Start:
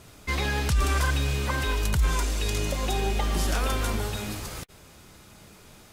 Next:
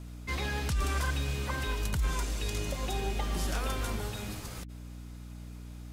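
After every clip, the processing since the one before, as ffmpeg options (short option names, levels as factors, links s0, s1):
-af "aeval=exprs='val(0)+0.0158*(sin(2*PI*60*n/s)+sin(2*PI*2*60*n/s)/2+sin(2*PI*3*60*n/s)/3+sin(2*PI*4*60*n/s)/4+sin(2*PI*5*60*n/s)/5)':c=same,volume=0.473"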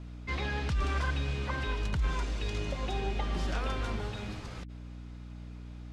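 -af "lowpass=4100"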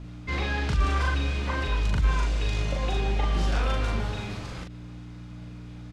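-filter_complex "[0:a]asplit=2[s0][s1];[s1]adelay=40,volume=0.794[s2];[s0][s2]amix=inputs=2:normalize=0,volume=1.5"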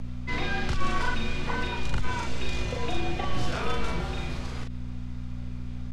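-af "acompressor=mode=upward:threshold=0.00891:ratio=2.5,aeval=exprs='val(0)+0.0178*(sin(2*PI*60*n/s)+sin(2*PI*2*60*n/s)/2+sin(2*PI*3*60*n/s)/3+sin(2*PI*4*60*n/s)/4+sin(2*PI*5*60*n/s)/5)':c=same,afreqshift=-53"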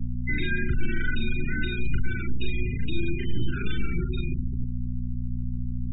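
-filter_complex "[0:a]afftfilt=real='re*gte(hypot(re,im),0.0398)':imag='im*gte(hypot(re,im),0.0398)':win_size=1024:overlap=0.75,asplit=2[s0][s1];[s1]alimiter=limit=0.075:level=0:latency=1:release=342,volume=1.26[s2];[s0][s2]amix=inputs=2:normalize=0,asuperstop=centerf=760:order=20:qfactor=0.74,volume=0.841"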